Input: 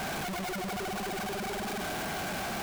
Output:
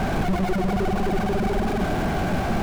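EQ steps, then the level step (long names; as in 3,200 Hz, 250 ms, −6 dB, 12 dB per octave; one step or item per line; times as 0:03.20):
spectral tilt −3.5 dB per octave
mains-hum notches 50/100/150/200 Hz
+7.5 dB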